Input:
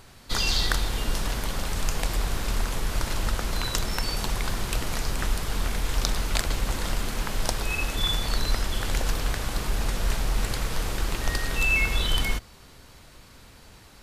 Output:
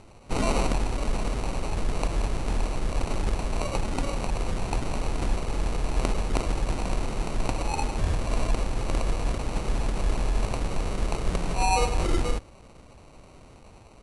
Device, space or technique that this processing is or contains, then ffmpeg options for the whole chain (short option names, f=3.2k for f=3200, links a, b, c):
crushed at another speed: -af "asetrate=88200,aresample=44100,acrusher=samples=13:mix=1:aa=0.000001,asetrate=22050,aresample=44100"